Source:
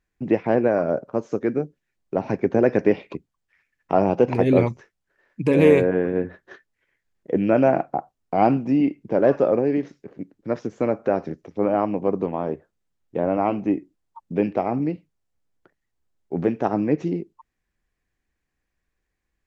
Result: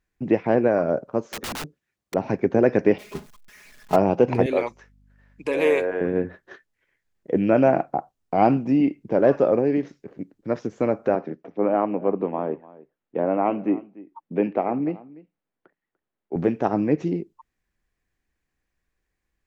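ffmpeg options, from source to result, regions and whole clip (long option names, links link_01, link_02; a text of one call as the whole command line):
ffmpeg -i in.wav -filter_complex "[0:a]asettb=1/sr,asplit=3[link_01][link_02][link_03];[link_01]atrim=end=1.254[link_04];[link_02]atrim=start=1.25:end=2.14,asetpts=PTS-STARTPTS,afade=type=in:duration=0.004:curve=qsin,afade=type=out:start_time=0.886:duration=0.004:curve=qsin,highpass=51,equalizer=frequency=1200:width_type=o:width=0.2:gain=4,aeval=exprs='(mod(21.1*val(0)+1,2)-1)/21.1':channel_layout=same[link_05];[link_03]atrim=start=2.136[link_06];[link_04][link_05]acrossfade=duration=0.004:curve1=hsin:curve2=qsin[link_07];[link_07][link_06]acrossfade=duration=0.004:curve1=qsin:curve2=hsin,asettb=1/sr,asplit=3[link_08][link_09][link_10];[link_08]atrim=end=2.984[link_11];[link_09]atrim=start=2.98:end=3.96,asetpts=PTS-STARTPTS,afade=type=in:duration=0.004:curve=qsin,afade=type=out:start_time=0.976:duration=0.004:curve=qsin,aeval=exprs='val(0)+0.5*0.0562*sgn(val(0))':channel_layout=same,agate=range=-33dB:threshold=-21dB:ratio=3:release=100:detection=peak,aecho=1:1:4.8:0.6,atrim=end_sample=43218[link_12];[link_10]atrim=start=3.956[link_13];[link_11][link_12]acrossfade=duration=0.004:curve1=hsin:curve2=qsin[link_14];[link_14][link_13]acrossfade=duration=0.004:curve1=qsin:curve2=hsin,asettb=1/sr,asplit=3[link_15][link_16][link_17];[link_15]atrim=end=4.464[link_18];[link_16]atrim=start=4.46:end=6.01,asetpts=PTS-STARTPTS,afade=type=in:duration=0.004:curve=qsin,afade=type=out:start_time=1.546:duration=0.004:curve=qsin,highpass=530,aeval=exprs='val(0)+0.00158*(sin(2*PI*50*n/s)+sin(2*PI*2*50*n/s)/2+sin(2*PI*3*50*n/s)/3+sin(2*PI*4*50*n/s)/4+sin(2*PI*5*50*n/s)/5)':channel_layout=same[link_19];[link_17]atrim=start=6.006[link_20];[link_18][link_19]acrossfade=duration=0.004:curve1=hsin:curve2=qsin[link_21];[link_21][link_20]acrossfade=duration=0.004:curve1=qsin:curve2=hsin,asettb=1/sr,asplit=3[link_22][link_23][link_24];[link_22]atrim=end=11.154[link_25];[link_23]atrim=start=11.15:end=16.36,asetpts=PTS-STARTPTS,afade=type=in:duration=0.004:curve=qsin,afade=type=out:start_time=5.206:duration=0.004:curve=qsin,acrossover=split=160 3300:gain=0.141 1 0.112[link_26][link_27][link_28];[link_26][link_27][link_28]amix=inputs=3:normalize=0,aecho=1:1:294:0.1,atrim=end_sample=229761[link_29];[link_24]atrim=start=16.356[link_30];[link_25][link_29]acrossfade=duration=0.004:curve1=hsin:curve2=qsin[link_31];[link_31][link_30]acrossfade=duration=0.004:curve1=qsin:curve2=hsin" out.wav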